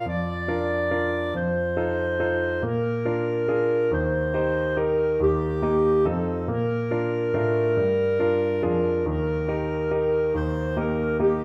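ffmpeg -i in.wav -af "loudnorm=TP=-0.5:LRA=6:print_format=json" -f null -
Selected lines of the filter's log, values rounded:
"input_i" : "-24.2",
"input_tp" : "-9.2",
"input_lra" : "1.3",
"input_thresh" : "-34.2",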